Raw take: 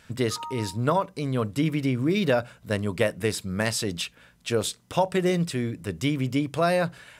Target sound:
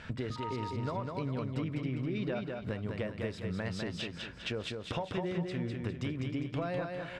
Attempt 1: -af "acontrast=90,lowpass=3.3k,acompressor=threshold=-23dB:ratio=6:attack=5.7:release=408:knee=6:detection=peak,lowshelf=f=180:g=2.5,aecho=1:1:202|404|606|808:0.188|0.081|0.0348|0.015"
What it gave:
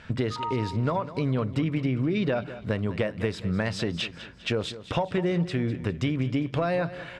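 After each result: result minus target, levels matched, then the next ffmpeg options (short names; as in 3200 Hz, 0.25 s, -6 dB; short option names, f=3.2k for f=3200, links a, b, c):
compressor: peak gain reduction -10 dB; echo-to-direct -10.5 dB
-af "acontrast=90,lowpass=3.3k,acompressor=threshold=-35dB:ratio=6:attack=5.7:release=408:knee=6:detection=peak,lowshelf=f=180:g=2.5,aecho=1:1:202|404|606|808:0.188|0.081|0.0348|0.015"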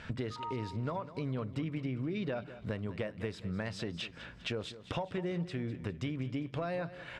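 echo-to-direct -10.5 dB
-af "acontrast=90,lowpass=3.3k,acompressor=threshold=-35dB:ratio=6:attack=5.7:release=408:knee=6:detection=peak,lowshelf=f=180:g=2.5,aecho=1:1:202|404|606|808|1010:0.631|0.271|0.117|0.0502|0.0216"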